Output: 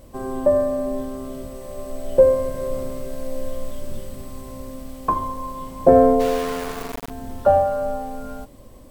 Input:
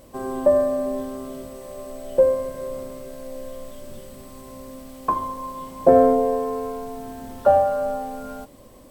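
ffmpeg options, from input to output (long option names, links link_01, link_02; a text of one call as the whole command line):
ffmpeg -i in.wav -filter_complex "[0:a]lowshelf=frequency=120:gain=10.5,asplit=3[link_01][link_02][link_03];[link_01]afade=type=out:start_time=6.19:duration=0.02[link_04];[link_02]aeval=exprs='val(0)*gte(abs(val(0)),0.0531)':channel_layout=same,afade=type=in:start_time=6.19:duration=0.02,afade=type=out:start_time=7.09:duration=0.02[link_05];[link_03]afade=type=in:start_time=7.09:duration=0.02[link_06];[link_04][link_05][link_06]amix=inputs=3:normalize=0,dynaudnorm=framelen=560:gausssize=7:maxgain=11.5dB,volume=-1dB" out.wav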